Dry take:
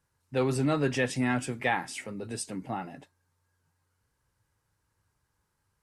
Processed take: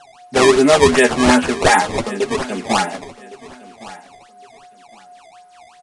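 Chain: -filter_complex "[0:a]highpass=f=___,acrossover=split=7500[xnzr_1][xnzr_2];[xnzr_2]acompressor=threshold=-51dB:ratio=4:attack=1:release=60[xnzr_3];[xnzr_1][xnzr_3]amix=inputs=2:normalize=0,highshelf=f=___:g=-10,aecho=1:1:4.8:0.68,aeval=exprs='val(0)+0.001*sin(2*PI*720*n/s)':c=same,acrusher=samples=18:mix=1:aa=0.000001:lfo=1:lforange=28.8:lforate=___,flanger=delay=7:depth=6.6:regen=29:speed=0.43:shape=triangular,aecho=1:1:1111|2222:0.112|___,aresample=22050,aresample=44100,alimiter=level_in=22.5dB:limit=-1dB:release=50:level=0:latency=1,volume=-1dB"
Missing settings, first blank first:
310, 8700, 2.7, 0.0269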